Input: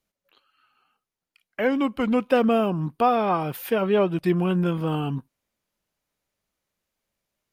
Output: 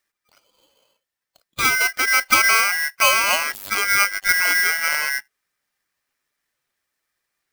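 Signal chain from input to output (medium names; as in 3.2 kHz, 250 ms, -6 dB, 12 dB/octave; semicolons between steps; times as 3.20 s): coarse spectral quantiser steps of 15 dB; 3.54–4.29 s: robot voice 98.9 Hz; polarity switched at an audio rate 1.8 kHz; trim +4 dB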